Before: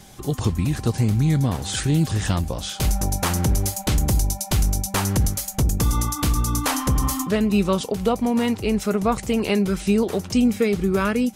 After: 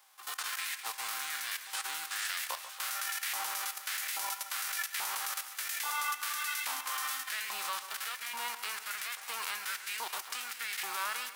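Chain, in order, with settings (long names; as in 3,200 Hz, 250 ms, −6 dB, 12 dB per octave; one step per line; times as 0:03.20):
spectral envelope flattened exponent 0.3
parametric band 6,700 Hz −2.5 dB 0.61 octaves
output level in coarse steps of 14 dB
auto-filter high-pass saw up 1.2 Hz 900–2,000 Hz
on a send: echo with a time of its own for lows and highs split 2,200 Hz, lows 140 ms, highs 201 ms, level −12 dB
on the sum: level −8.5 dB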